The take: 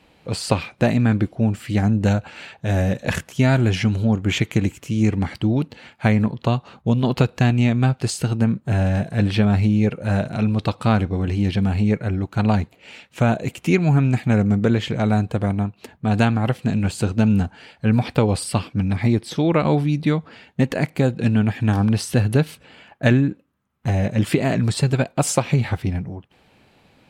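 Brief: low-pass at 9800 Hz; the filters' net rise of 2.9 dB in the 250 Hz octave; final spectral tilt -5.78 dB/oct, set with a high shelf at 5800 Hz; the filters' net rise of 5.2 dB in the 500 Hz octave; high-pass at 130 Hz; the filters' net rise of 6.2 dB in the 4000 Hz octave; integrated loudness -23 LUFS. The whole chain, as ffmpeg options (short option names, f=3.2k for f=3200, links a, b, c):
-af "highpass=130,lowpass=9.8k,equalizer=f=250:t=o:g=3,equalizer=f=500:t=o:g=5.5,equalizer=f=4k:t=o:g=5,highshelf=f=5.8k:g=8,volume=-4dB"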